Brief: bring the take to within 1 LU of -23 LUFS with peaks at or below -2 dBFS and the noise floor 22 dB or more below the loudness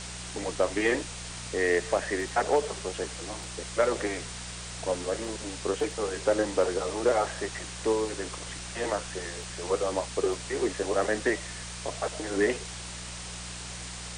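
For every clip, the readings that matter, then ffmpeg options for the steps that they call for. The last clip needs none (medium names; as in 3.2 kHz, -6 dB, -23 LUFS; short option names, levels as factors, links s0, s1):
hum 60 Hz; highest harmonic 180 Hz; hum level -41 dBFS; noise floor -40 dBFS; noise floor target -52 dBFS; loudness -30.0 LUFS; peak level -11.5 dBFS; loudness target -23.0 LUFS
-> -af "bandreject=f=60:t=h:w=4,bandreject=f=120:t=h:w=4,bandreject=f=180:t=h:w=4"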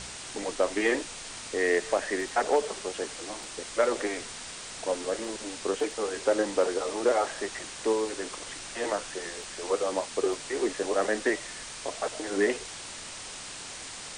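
hum not found; noise floor -41 dBFS; noise floor target -53 dBFS
-> -af "afftdn=nr=12:nf=-41"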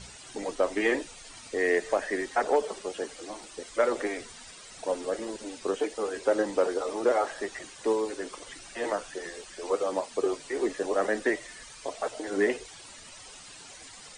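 noise floor -48 dBFS; noise floor target -52 dBFS
-> -af "afftdn=nr=6:nf=-48"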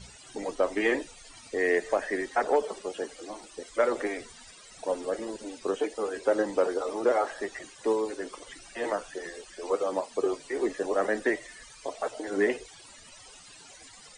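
noise floor -51 dBFS; noise floor target -52 dBFS
-> -af "afftdn=nr=6:nf=-51"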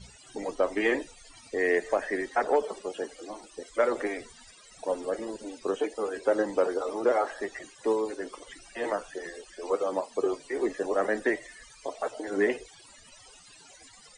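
noise floor -54 dBFS; loudness -30.0 LUFS; peak level -12.0 dBFS; loudness target -23.0 LUFS
-> -af "volume=2.24"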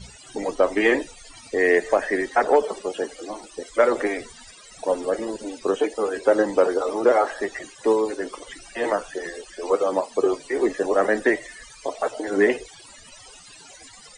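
loudness -23.0 LUFS; peak level -5.0 dBFS; noise floor -47 dBFS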